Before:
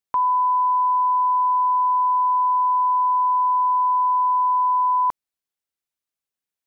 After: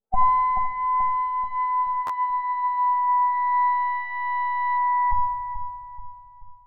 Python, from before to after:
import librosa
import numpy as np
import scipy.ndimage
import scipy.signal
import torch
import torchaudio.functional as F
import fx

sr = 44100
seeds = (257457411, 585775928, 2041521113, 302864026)

p1 = fx.lower_of_two(x, sr, delay_ms=9.2)
p2 = fx.doppler_pass(p1, sr, speed_mps=6, closest_m=5.8, pass_at_s=1.99)
p3 = scipy.signal.sosfilt(scipy.signal.butter(2, 1100.0, 'lowpass', fs=sr, output='sos'), p2)
p4 = fx.spec_gate(p3, sr, threshold_db=-20, keep='strong')
p5 = fx.peak_eq(p4, sr, hz=730.0, db=6.5, octaves=1.3)
p6 = fx.over_compress(p5, sr, threshold_db=-28.0, ratio=-1.0)
p7 = fx.formant_shift(p6, sr, semitones=-5)
p8 = p7 + fx.echo_filtered(p7, sr, ms=432, feedback_pct=55, hz=860.0, wet_db=-7.0, dry=0)
p9 = fx.room_shoebox(p8, sr, seeds[0], volume_m3=2900.0, walls='furnished', distance_m=1.5)
p10 = fx.buffer_glitch(p9, sr, at_s=(2.06,), block=512, repeats=2)
y = F.gain(torch.from_numpy(p10), 9.0).numpy()